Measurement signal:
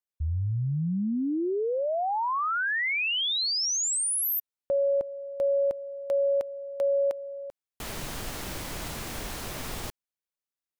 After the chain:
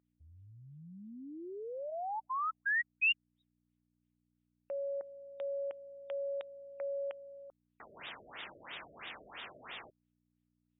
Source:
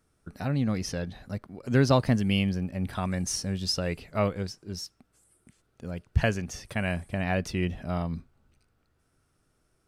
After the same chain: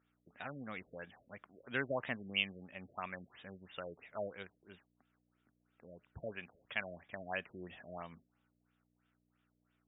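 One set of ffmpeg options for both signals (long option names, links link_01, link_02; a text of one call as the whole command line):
ffmpeg -i in.wav -af "aeval=exprs='val(0)+0.00251*(sin(2*PI*60*n/s)+sin(2*PI*2*60*n/s)/2+sin(2*PI*3*60*n/s)/3+sin(2*PI*4*60*n/s)/4+sin(2*PI*5*60*n/s)/5)':channel_layout=same,aderivative,afftfilt=real='re*lt(b*sr/1024,640*pow(3800/640,0.5+0.5*sin(2*PI*3*pts/sr)))':imag='im*lt(b*sr/1024,640*pow(3800/640,0.5+0.5*sin(2*PI*3*pts/sr)))':win_size=1024:overlap=0.75,volume=9dB" out.wav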